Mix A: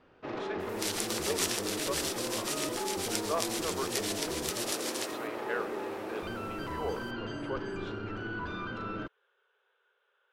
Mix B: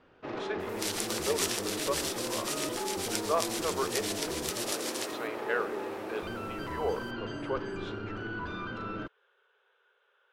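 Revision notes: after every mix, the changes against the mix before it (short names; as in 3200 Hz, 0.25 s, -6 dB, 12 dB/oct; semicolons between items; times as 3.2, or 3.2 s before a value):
speech +4.0 dB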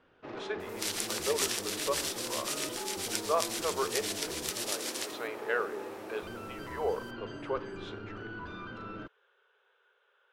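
first sound -5.0 dB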